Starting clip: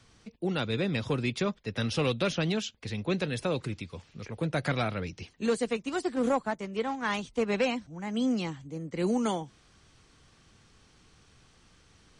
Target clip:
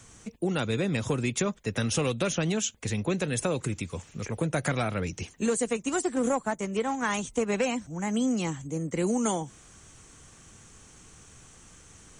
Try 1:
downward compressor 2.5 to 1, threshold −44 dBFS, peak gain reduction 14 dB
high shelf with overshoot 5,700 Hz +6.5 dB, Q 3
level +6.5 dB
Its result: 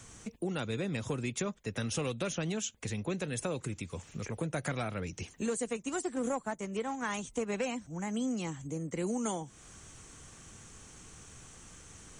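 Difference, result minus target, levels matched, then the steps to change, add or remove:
downward compressor: peak gain reduction +7 dB
change: downward compressor 2.5 to 1, threshold −32.5 dBFS, peak gain reduction 7 dB

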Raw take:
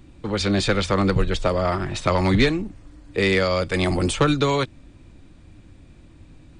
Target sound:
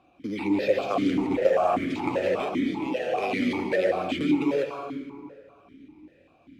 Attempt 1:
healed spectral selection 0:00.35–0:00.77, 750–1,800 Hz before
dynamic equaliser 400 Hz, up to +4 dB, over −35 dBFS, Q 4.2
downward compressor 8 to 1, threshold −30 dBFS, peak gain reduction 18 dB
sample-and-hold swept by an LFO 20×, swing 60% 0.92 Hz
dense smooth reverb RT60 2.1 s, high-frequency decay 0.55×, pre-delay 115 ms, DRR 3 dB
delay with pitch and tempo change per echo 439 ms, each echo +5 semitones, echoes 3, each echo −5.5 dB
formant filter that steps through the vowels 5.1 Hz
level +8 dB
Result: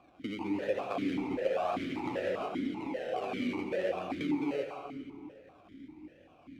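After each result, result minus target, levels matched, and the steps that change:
downward compressor: peak gain reduction +9 dB; sample-and-hold swept by an LFO: distortion +7 dB
change: downward compressor 8 to 1, threshold −20 dBFS, peak gain reduction 9 dB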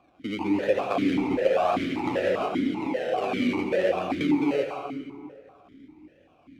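sample-and-hold swept by an LFO: distortion +7 dB
change: sample-and-hold swept by an LFO 6×, swing 60% 0.92 Hz

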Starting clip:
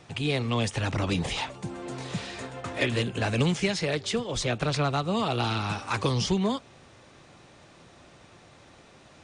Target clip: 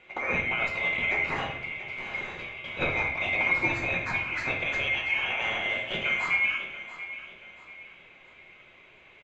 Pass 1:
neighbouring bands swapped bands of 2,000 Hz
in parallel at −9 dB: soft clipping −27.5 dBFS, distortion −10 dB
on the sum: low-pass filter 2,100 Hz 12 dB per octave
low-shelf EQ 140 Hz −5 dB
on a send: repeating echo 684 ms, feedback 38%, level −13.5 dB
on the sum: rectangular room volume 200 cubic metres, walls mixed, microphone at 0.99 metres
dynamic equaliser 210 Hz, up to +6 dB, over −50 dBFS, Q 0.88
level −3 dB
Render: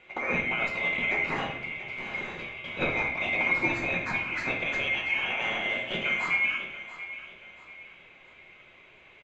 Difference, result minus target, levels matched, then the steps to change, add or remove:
soft clipping: distortion +9 dB; 250 Hz band +3.0 dB
change: soft clipping −19 dBFS, distortion −19 dB
change: dynamic equaliser 92 Hz, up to +6 dB, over −50 dBFS, Q 0.88

